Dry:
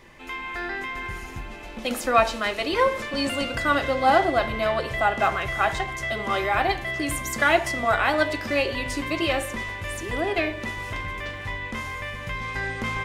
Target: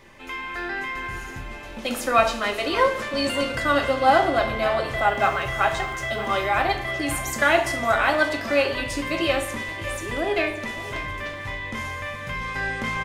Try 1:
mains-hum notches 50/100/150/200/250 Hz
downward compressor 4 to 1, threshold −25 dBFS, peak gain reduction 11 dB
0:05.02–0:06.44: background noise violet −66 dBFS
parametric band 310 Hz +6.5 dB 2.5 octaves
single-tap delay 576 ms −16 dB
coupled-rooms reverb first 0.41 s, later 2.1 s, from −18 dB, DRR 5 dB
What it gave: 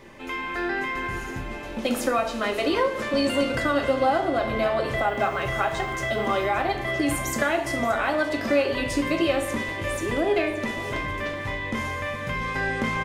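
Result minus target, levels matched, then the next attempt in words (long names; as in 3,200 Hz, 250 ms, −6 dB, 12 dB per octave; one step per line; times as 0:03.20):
downward compressor: peak gain reduction +11 dB; 250 Hz band +5.0 dB
mains-hum notches 50/100/150/200/250 Hz
0:05.02–0:06.44: background noise violet −66 dBFS
single-tap delay 576 ms −16 dB
coupled-rooms reverb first 0.41 s, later 2.1 s, from −18 dB, DRR 5 dB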